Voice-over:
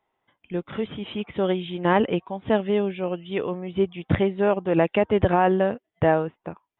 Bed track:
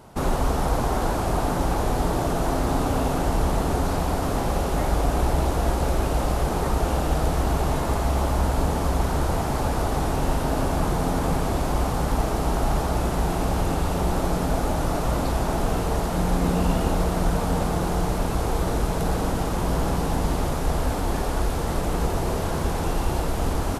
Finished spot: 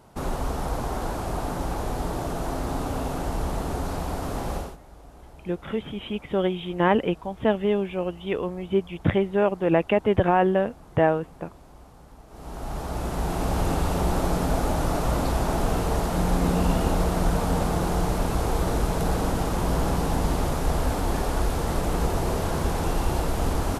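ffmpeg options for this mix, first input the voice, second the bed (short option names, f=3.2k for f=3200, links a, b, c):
-filter_complex "[0:a]adelay=4950,volume=-0.5dB[a];[1:a]volume=19.5dB,afade=t=out:st=4.55:d=0.22:silence=0.1,afade=t=in:st=12.28:d=1.4:silence=0.0562341[b];[a][b]amix=inputs=2:normalize=0"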